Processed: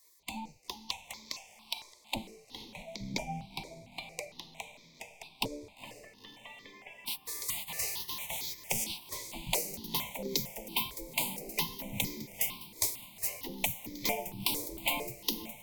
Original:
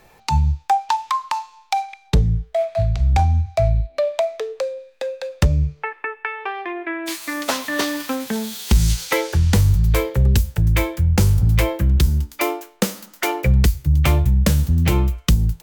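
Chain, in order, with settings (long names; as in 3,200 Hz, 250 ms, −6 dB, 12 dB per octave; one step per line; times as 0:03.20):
elliptic band-stop filter 950–2,200 Hz, stop band 80 dB
gate on every frequency bin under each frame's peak −20 dB weak
0:08.84–0:09.51: high-shelf EQ 4,100 Hz −11 dB
on a send: feedback delay with all-pass diffusion 469 ms, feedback 53%, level −13.5 dB
on the sum: step-sequenced phaser 4.4 Hz 770–2,800 Hz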